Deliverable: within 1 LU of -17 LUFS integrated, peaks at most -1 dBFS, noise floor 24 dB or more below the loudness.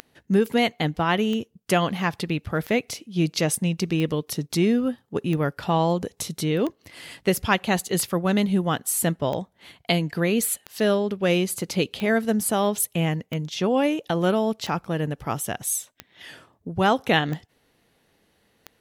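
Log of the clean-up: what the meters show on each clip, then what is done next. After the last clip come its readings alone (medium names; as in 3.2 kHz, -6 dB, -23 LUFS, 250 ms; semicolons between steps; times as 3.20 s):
clicks found 15; loudness -24.0 LUFS; peak level -6.0 dBFS; loudness target -17.0 LUFS
-> de-click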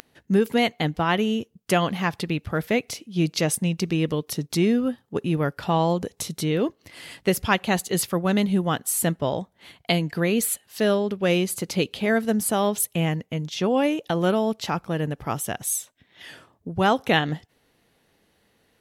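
clicks found 0; loudness -24.0 LUFS; peak level -6.0 dBFS; loudness target -17.0 LUFS
-> trim +7 dB; peak limiter -1 dBFS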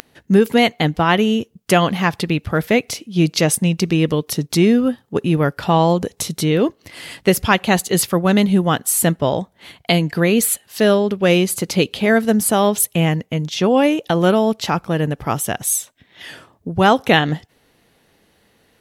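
loudness -17.0 LUFS; peak level -1.0 dBFS; noise floor -59 dBFS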